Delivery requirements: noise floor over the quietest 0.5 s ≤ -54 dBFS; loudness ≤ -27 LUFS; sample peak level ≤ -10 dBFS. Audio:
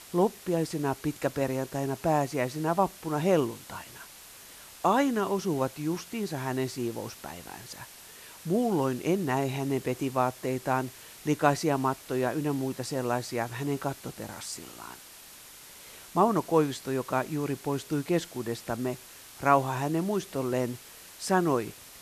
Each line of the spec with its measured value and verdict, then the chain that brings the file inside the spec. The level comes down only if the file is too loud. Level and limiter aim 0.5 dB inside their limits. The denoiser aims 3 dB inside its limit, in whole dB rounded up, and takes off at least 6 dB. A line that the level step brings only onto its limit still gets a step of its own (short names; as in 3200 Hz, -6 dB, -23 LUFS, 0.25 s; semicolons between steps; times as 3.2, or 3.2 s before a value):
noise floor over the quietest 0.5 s -49 dBFS: fail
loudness -29.5 LUFS: OK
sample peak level -8.0 dBFS: fail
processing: denoiser 8 dB, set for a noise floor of -49 dBFS; limiter -10.5 dBFS